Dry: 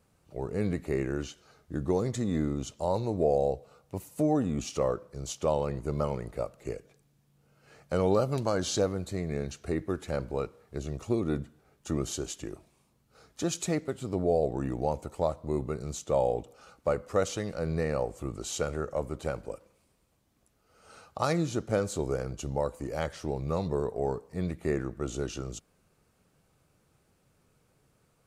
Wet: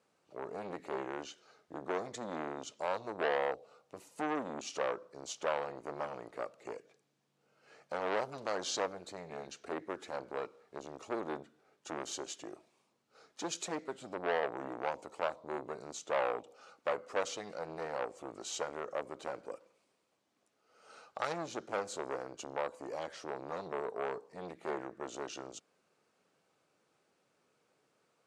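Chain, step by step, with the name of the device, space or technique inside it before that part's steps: public-address speaker with an overloaded transformer (core saturation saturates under 1500 Hz; BPF 320–6800 Hz); gain -2.5 dB

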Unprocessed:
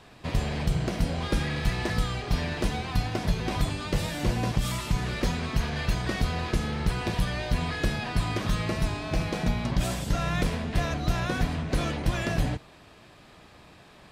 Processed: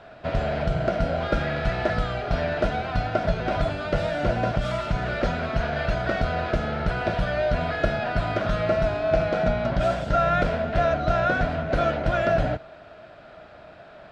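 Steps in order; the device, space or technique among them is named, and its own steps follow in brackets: inside a cardboard box (LPF 3800 Hz 12 dB/oct; small resonant body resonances 640/1400 Hz, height 17 dB, ringing for 30 ms)

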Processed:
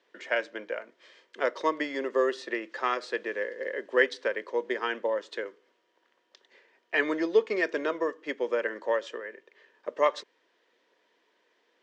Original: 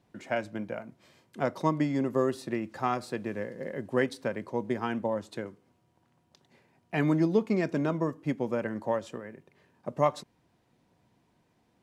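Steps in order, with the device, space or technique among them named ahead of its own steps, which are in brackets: phone speaker on a table (speaker cabinet 390–6400 Hz, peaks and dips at 460 Hz +4 dB, 760 Hz -10 dB, 1800 Hz +8 dB, 3200 Hz +6 dB); gain +3 dB

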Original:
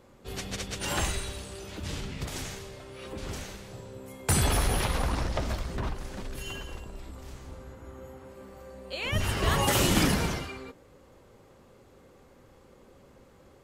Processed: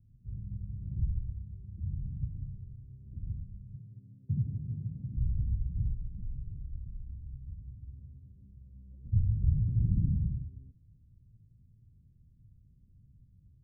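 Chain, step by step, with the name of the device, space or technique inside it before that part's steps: 3.75–5.17 HPF 120 Hz 24 dB/oct; the neighbour's flat through the wall (LPF 150 Hz 24 dB/oct; bell 110 Hz +4 dB 0.63 oct); gain +1 dB

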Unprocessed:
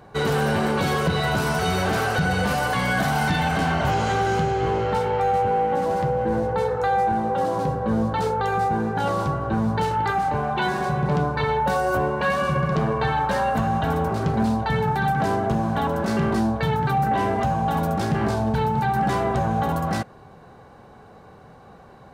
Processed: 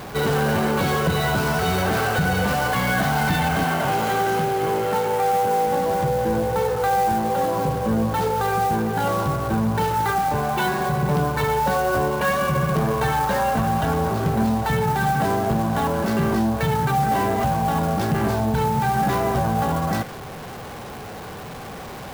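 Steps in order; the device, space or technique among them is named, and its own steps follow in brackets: early CD player with a faulty converter (zero-crossing step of -31 dBFS; clock jitter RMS 0.024 ms); 3.64–5.67 HPF 160 Hz 12 dB/oct

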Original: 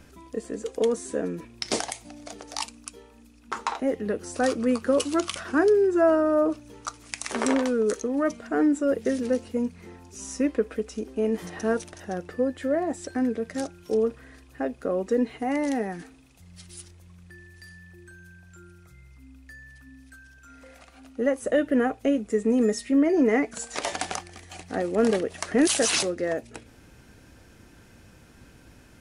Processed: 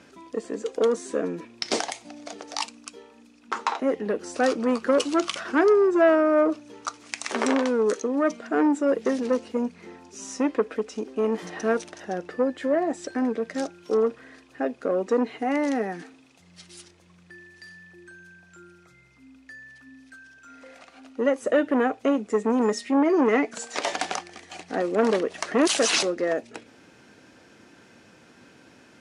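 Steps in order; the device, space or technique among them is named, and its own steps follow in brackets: public-address speaker with an overloaded transformer (core saturation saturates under 740 Hz; BPF 220–6600 Hz); gain +3 dB

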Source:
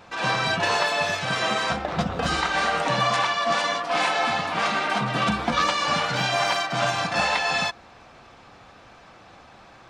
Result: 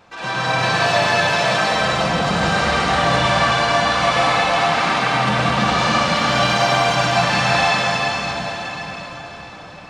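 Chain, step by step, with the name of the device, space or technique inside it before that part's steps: cathedral (reverb RT60 5.6 s, pre-delay 0.1 s, DRR -8.5 dB); gain -2.5 dB

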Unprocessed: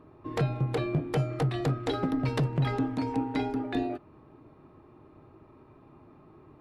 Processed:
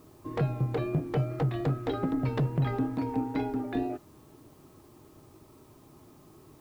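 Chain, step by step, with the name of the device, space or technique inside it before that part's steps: cassette deck with a dirty head (tape spacing loss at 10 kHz 20 dB; wow and flutter 29 cents; white noise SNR 34 dB)

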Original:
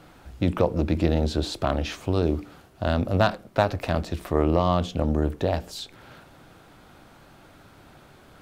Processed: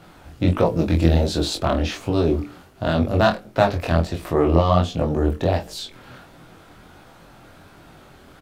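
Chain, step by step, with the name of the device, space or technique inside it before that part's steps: double-tracked vocal (doubler 24 ms -6.5 dB; chorus 1.4 Hz, delay 17.5 ms, depth 7.2 ms); 0.66–1.58 high shelf 5200 Hz +7 dB; gain +6 dB

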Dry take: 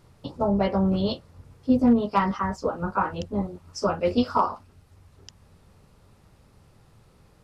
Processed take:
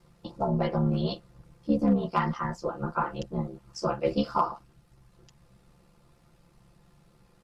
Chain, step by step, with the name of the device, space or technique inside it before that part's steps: ring-modulated robot voice (ring modulator 35 Hz; comb 5.8 ms); gain -2.5 dB

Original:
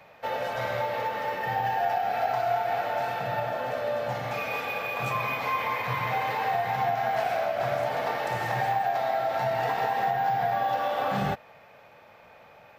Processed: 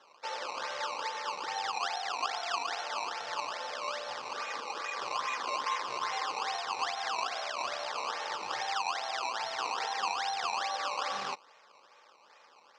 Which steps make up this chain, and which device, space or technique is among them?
circuit-bent sampling toy (decimation with a swept rate 18×, swing 100% 2.4 Hz; speaker cabinet 440–6000 Hz, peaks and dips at 670 Hz -9 dB, 1100 Hz +6 dB, 5100 Hz +5 dB); low shelf 330 Hz -6.5 dB; gain -5 dB

